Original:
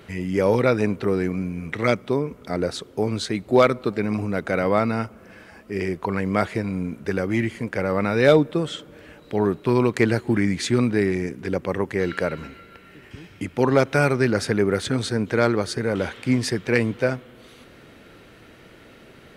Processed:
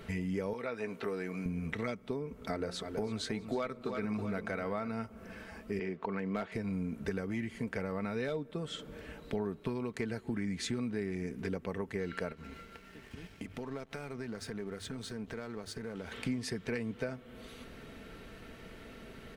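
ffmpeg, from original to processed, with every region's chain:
-filter_complex "[0:a]asettb=1/sr,asplit=3[a][b][c];[a]atrim=end=0.534[d];[b]atrim=start=0.53:end=1.46,asetpts=PTS-STARTPTS,afade=t=in:d=0.004:c=qsin,afade=t=out:st=0.926:d=0.004:c=qsin,highpass=f=730:p=1,acrossover=split=3200[e][f];[f]acompressor=threshold=-47dB:ratio=4:attack=1:release=60[g];[e][g]amix=inputs=2:normalize=0,asplit=2[h][i];[i]adelay=17,volume=-12dB[j];[h][j]amix=inputs=2:normalize=0,atrim=end_sample=41013[k];[c]atrim=start=1.456[l];[d][k]acrossfade=d=0.004:c1=hsin:c2=qsin[m];[m][l]acrossfade=d=0.004:c1=qsin:c2=hsin,asettb=1/sr,asplit=3[n][o][p];[n]atrim=end=2.444[q];[o]atrim=start=2.44:end=4.91,asetpts=PTS-STARTPTS,afade=t=in:d=0.004:c=qsin,afade=t=out:st=2.466:d=0.004:c=qsin,equalizer=f=1.4k:t=o:w=2:g=3.5,bandreject=f=60:t=h:w=6,bandreject=f=120:t=h:w=6,bandreject=f=180:t=h:w=6,bandreject=f=240:t=h:w=6,bandreject=f=300:t=h:w=6,bandreject=f=360:t=h:w=6,bandreject=f=420:t=h:w=6,bandreject=f=480:t=h:w=6,bandreject=f=540:t=h:w=6,aecho=1:1:325|650|975:0.224|0.0761|0.0259,atrim=end_sample=108927[r];[p]atrim=start=4.906[s];[q][r]acrossfade=d=0.004:c1=hsin:c2=qsin[t];[t][s]acrossfade=d=0.004:c1=qsin:c2=hsin,asettb=1/sr,asplit=3[u][v][w];[u]atrim=end=5.794[x];[v]atrim=start=5.79:end=6.52,asetpts=PTS-STARTPTS,afade=t=in:d=0.004:c=qsin,afade=t=out:st=0.726:d=0.004:c=qsin,highpass=180,lowpass=3.5k,asoftclip=type=hard:threshold=-13.5dB[y];[w]atrim=start=6.516[z];[x][y]acrossfade=d=0.004:c1=hsin:c2=qsin[aa];[aa][z]acrossfade=d=0.004:c1=qsin:c2=hsin,asettb=1/sr,asplit=3[ab][ac][ad];[ab]atrim=end=12.324[ae];[ac]atrim=start=12.32:end=16.12,asetpts=PTS-STARTPTS,afade=t=in:d=0.004:c=qsin,afade=t=out:st=3.796:d=0.004:c=qsin,bandreject=f=50:t=h:w=6,bandreject=f=100:t=h:w=6,bandreject=f=150:t=h:w=6,acompressor=threshold=-37dB:ratio=4:attack=3.2:release=140:knee=1:detection=peak,aeval=exprs='sgn(val(0))*max(abs(val(0))-0.00211,0)':c=same[af];[ad]atrim=start=16.116[ag];[ae][af]acrossfade=d=0.004:c1=hsin:c2=qsin[ah];[ah][ag]acrossfade=d=0.004:c1=qsin:c2=hsin,acompressor=threshold=-31dB:ratio=6,lowshelf=f=92:g=10,aecho=1:1:4.5:0.39,volume=-4dB"

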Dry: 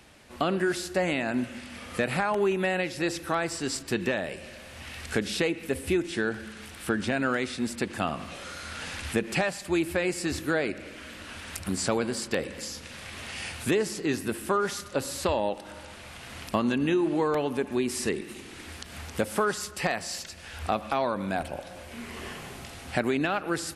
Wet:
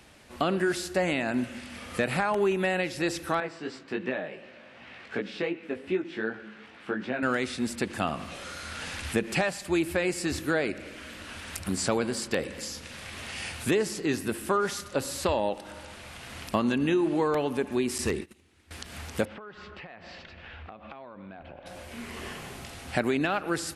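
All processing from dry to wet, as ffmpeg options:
-filter_complex "[0:a]asettb=1/sr,asplit=3[a][b][c];[a]atrim=end=3.404[d];[b]atrim=start=3.4:end=7.23,asetpts=PTS-STARTPTS,afade=t=in:d=0.004:c=qsin,afade=t=out:st=3.826:d=0.004:c=qsin,flanger=delay=15.5:depth=4.3:speed=2.7,highpass=190,lowpass=2.7k[e];[c]atrim=start=7.226[f];[d][e]acrossfade=d=0.004:c1=hsin:c2=qsin[g];[g][f]acrossfade=d=0.004:c1=qsin:c2=hsin,asettb=1/sr,asplit=3[h][i][j];[h]atrim=end=17.984[k];[i]atrim=start=17.98:end=18.71,asetpts=PTS-STARTPTS,afade=t=in:d=0.004:c=qsin,afade=t=out:st=0.726:d=0.004:c=qsin,agate=range=-21dB:threshold=-39dB:ratio=16:release=100:detection=peak,equalizer=f=81:w=2:g=12.5,aeval=exprs='0.119*(abs(mod(val(0)/0.119+3,4)-2)-1)':c=same[l];[j]atrim=start=18.706[m];[k][l]acrossfade=d=0.004:c1=hsin:c2=qsin[n];[n][m]acrossfade=d=0.004:c1=qsin:c2=hsin,asettb=1/sr,asplit=3[o][p][q];[o]atrim=end=19.254[r];[p]atrim=start=19.25:end=21.66,asetpts=PTS-STARTPTS,afade=t=in:d=0.004:c=qsin,afade=t=out:st=2.406:d=0.004:c=qsin,lowpass=f=3.2k:w=0.5412,lowpass=f=3.2k:w=1.3066,acompressor=threshold=-40dB:ratio=12:attack=3.2:release=140:knee=1:detection=peak[s];[q]atrim=start=21.656[t];[r][s]acrossfade=d=0.004:c1=hsin:c2=qsin[u];[u][t]acrossfade=d=0.004:c1=qsin:c2=hsin"

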